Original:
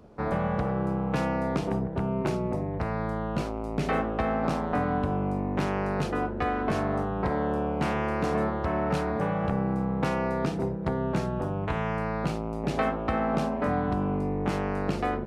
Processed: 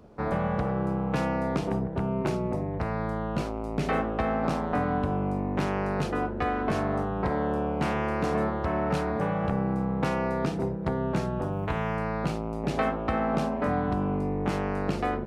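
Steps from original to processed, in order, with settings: 11.52–11.96 s: short-mantissa float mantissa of 6-bit

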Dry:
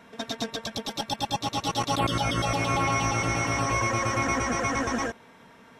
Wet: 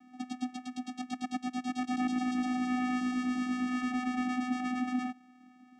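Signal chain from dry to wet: vocoder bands 4, square 251 Hz; 2.96–3.94 s: de-hum 150.4 Hz, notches 27; trim -5 dB

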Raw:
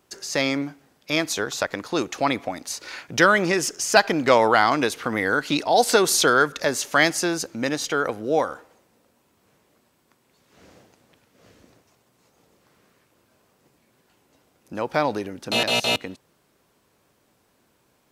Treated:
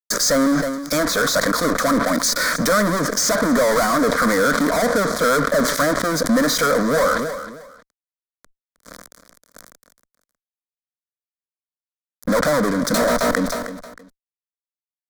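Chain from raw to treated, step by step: tempo 1.2×; dynamic bell 1.3 kHz, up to +6 dB, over -31 dBFS, Q 0.75; in parallel at -2 dB: compression, threshold -28 dBFS, peak gain reduction 19.5 dB; on the sum: low-pass that closes with the level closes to 890 Hz, closed at -13.5 dBFS; fuzz box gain 37 dB, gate -41 dBFS; static phaser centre 550 Hz, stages 8; on a send: feedback delay 314 ms, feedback 21%, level -23 dB; on the sum: decay stretcher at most 43 dB/s

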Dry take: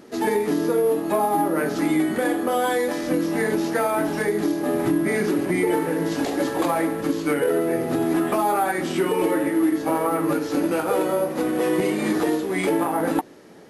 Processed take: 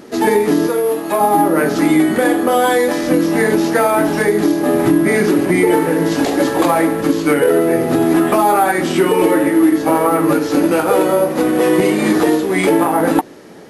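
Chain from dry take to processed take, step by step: 0.67–1.21 s: bass shelf 460 Hz -9.5 dB; trim +8.5 dB

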